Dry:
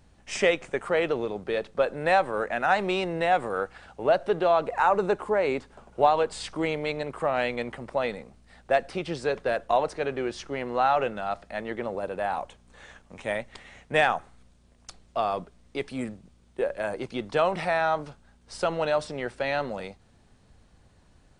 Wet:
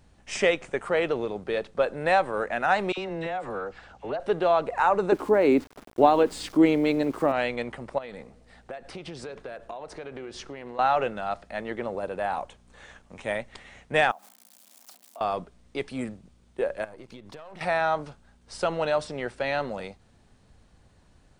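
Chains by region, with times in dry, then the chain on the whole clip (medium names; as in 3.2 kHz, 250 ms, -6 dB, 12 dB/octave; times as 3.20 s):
2.92–4.20 s: low-pass 7.4 kHz 24 dB/octave + compression, threshold -27 dBFS + phase dispersion lows, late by 57 ms, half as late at 1.2 kHz
5.12–7.32 s: peaking EQ 290 Hz +14.5 dB 0.81 oct + small samples zeroed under -44 dBFS
7.98–10.79 s: compression 10:1, threshold -34 dBFS + filtered feedback delay 108 ms, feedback 69%, low-pass 1.7 kHz, level -20 dB + loudspeaker Doppler distortion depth 0.1 ms
14.11–15.21 s: zero-crossing glitches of -32 dBFS + rippled Chebyshev high-pass 190 Hz, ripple 9 dB + compression 8:1, threshold -41 dBFS
16.84–17.61 s: partial rectifier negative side -7 dB + compression 16:1, threshold -39 dBFS
whole clip: none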